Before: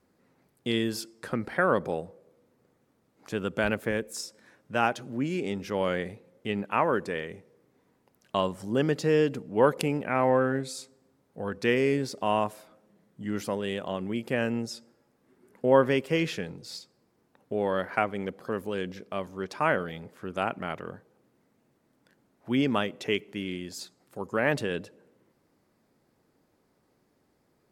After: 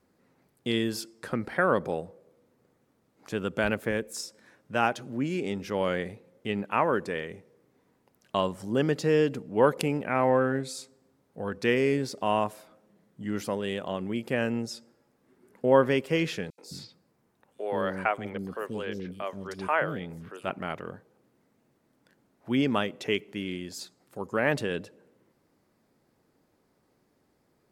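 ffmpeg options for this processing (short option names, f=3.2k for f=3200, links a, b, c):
-filter_complex "[0:a]asettb=1/sr,asplit=3[a][b][c];[a]atrim=end=16.504[d];[b]atrim=start=16.5:end=20.5,asetpts=PTS-STARTPTS,afade=t=in:d=0.004:c=qsin,afade=t=out:st=3.996:d=0.004:c=qsin,acrossover=split=380|4400[e][f][g];[f]adelay=80[h];[e]adelay=210[i];[i][h][g]amix=inputs=3:normalize=0,atrim=end_sample=176400[j];[c]atrim=start=20.496[k];[d][j]acrossfade=d=0.004:c1=hsin:c2=qsin[l];[l][k]acrossfade=d=0.004:c1=qsin:c2=hsin"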